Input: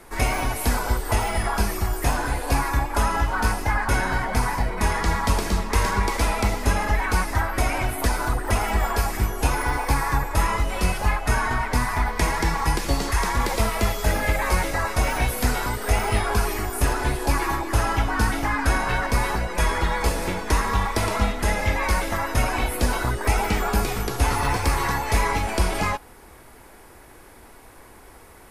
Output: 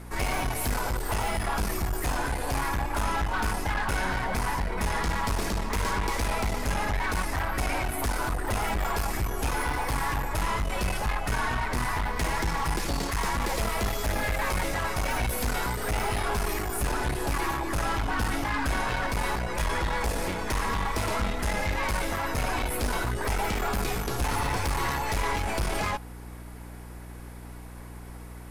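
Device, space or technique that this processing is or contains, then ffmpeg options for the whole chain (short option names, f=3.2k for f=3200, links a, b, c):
valve amplifier with mains hum: -af "aeval=exprs='(tanh(15.8*val(0)+0.4)-tanh(0.4))/15.8':c=same,aeval=exprs='val(0)+0.00891*(sin(2*PI*60*n/s)+sin(2*PI*2*60*n/s)/2+sin(2*PI*3*60*n/s)/3+sin(2*PI*4*60*n/s)/4+sin(2*PI*5*60*n/s)/5)':c=same"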